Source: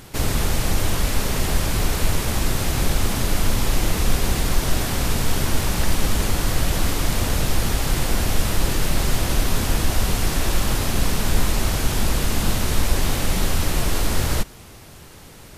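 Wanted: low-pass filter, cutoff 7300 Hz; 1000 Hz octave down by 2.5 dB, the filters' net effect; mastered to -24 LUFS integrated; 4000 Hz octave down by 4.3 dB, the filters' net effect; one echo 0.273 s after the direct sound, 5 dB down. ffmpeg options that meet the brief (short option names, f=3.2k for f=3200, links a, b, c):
-af "lowpass=7.3k,equalizer=f=1k:t=o:g=-3,equalizer=f=4k:t=o:g=-5,aecho=1:1:273:0.562,volume=-0.5dB"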